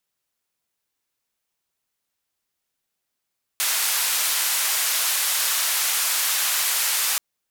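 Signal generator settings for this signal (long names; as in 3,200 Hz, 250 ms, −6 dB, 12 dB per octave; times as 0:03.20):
band-limited noise 970–15,000 Hz, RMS −22.5 dBFS 3.58 s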